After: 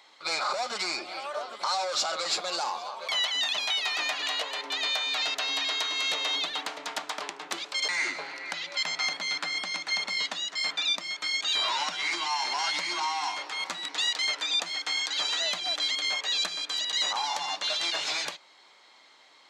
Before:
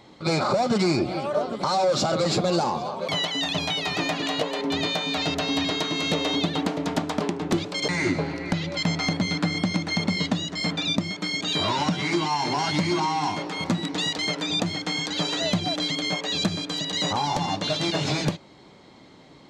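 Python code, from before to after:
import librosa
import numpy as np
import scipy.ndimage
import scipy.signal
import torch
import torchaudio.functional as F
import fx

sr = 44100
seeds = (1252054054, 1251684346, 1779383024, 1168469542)

y = scipy.signal.sosfilt(scipy.signal.butter(2, 1100.0, 'highpass', fs=sr, output='sos'), x)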